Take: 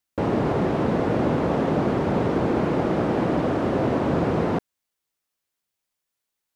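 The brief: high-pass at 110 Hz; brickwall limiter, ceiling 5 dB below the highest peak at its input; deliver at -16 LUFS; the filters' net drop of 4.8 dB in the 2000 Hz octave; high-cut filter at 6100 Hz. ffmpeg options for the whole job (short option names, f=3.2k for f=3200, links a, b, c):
-af "highpass=110,lowpass=6.1k,equalizer=f=2k:t=o:g=-6.5,volume=9.5dB,alimiter=limit=-6.5dB:level=0:latency=1"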